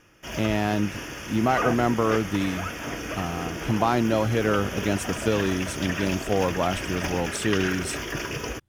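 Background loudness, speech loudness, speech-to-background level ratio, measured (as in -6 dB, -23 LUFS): -31.5 LUFS, -26.0 LUFS, 5.5 dB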